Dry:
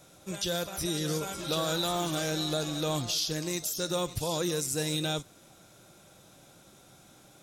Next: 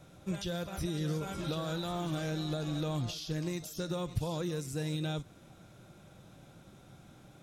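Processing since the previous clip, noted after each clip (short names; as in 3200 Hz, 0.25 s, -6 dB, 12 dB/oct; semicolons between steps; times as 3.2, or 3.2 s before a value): compressor, threshold -32 dBFS, peak gain reduction 6.5 dB; tone controls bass +8 dB, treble -9 dB; gain -1.5 dB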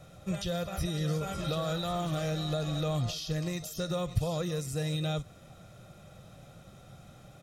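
comb 1.6 ms, depth 50%; gain +2.5 dB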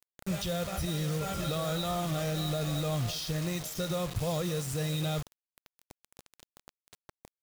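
limiter -25 dBFS, peak gain reduction 8.5 dB; bit-crush 7-bit; gain +1.5 dB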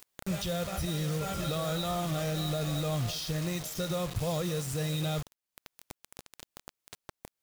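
upward compressor, threshold -36 dBFS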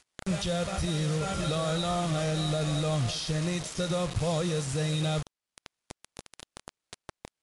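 median filter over 3 samples; gain +3.5 dB; MP3 128 kbps 24000 Hz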